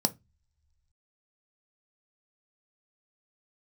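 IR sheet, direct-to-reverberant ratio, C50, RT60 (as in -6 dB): 9.5 dB, 22.5 dB, no single decay rate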